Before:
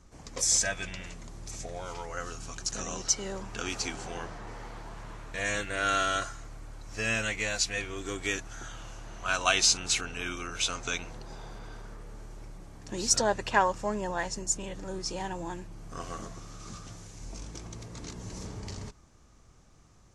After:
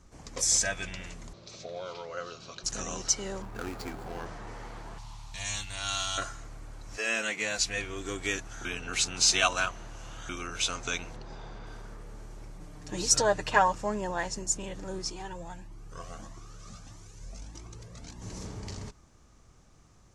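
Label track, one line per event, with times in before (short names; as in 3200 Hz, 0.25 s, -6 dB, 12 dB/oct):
1.330000	2.640000	speaker cabinet 170–5100 Hz, peaks and dips at 270 Hz -8 dB, 570 Hz +6 dB, 830 Hz -8 dB, 1800 Hz -8 dB, 4000 Hz +8 dB
3.420000	4.260000	median filter over 15 samples
4.980000	6.180000	EQ curve 110 Hz 0 dB, 510 Hz -22 dB, 860 Hz +1 dB, 1600 Hz -14 dB, 2900 Hz 0 dB, 4500 Hz +7 dB, 7700 Hz +2 dB
6.960000	7.570000	HPF 360 Hz -> 110 Hz 24 dB/oct
8.650000	10.290000	reverse
11.160000	11.670000	LPF 5300 Hz
12.600000	13.750000	comb 6.6 ms
15.100000	18.220000	cascading flanger rising 1.6 Hz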